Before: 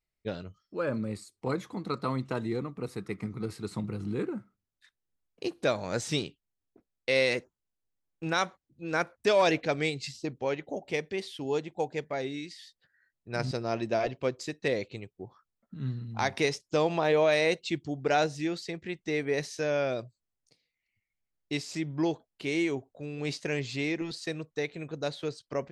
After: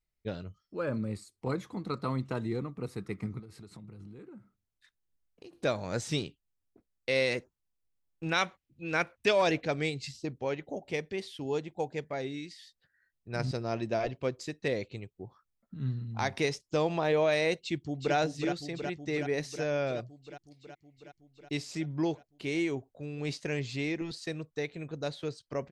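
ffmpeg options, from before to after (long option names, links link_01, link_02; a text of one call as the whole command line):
ffmpeg -i in.wav -filter_complex "[0:a]asettb=1/sr,asplit=3[link_01][link_02][link_03];[link_01]atrim=end=3.394[link_04];[link_02]atrim=start=3.39:end=5.53,asetpts=PTS-STARTPTS,afade=type=in:duration=0.004:curve=qsin,afade=type=out:start_time=2.136:duration=0.004:curve=qsin,acompressor=threshold=-45dB:ratio=6:attack=3.2:release=140:knee=1:detection=peak[link_05];[link_03]atrim=start=5.526[link_06];[link_04][link_05]acrossfade=duration=0.004:curve1=hsin:curve2=qsin[link_07];[link_07][link_06]acrossfade=duration=0.004:curve1=qsin:curve2=hsin,asettb=1/sr,asplit=3[link_08][link_09][link_10];[link_08]atrim=end=8.294[link_11];[link_09]atrim=start=8.29:end=9.31,asetpts=PTS-STARTPTS,afade=type=in:duration=0.004:curve=qsin,afade=type=out:start_time=1.016:duration=0.004:curve=qsin,equalizer=frequency=2600:width=1.5:gain=9[link_12];[link_10]atrim=start=9.306[link_13];[link_11][link_12]acrossfade=duration=0.004:curve1=hsin:curve2=qsin[link_14];[link_14][link_13]acrossfade=duration=0.004:curve1=qsin:curve2=hsin,asplit=2[link_15][link_16];[link_16]afade=type=in:start_time=17.57:duration=0.01,afade=type=out:start_time=18.15:duration=0.01,aecho=0:1:370|740|1110|1480|1850|2220|2590|2960|3330|3700|4070|4440:0.501187|0.37589|0.281918|0.211438|0.158579|0.118934|0.0892006|0.0669004|0.0501753|0.0376315|0.0282236|0.0211677[link_17];[link_15][link_17]amix=inputs=2:normalize=0,lowshelf=frequency=130:gain=7.5,volume=-3dB" out.wav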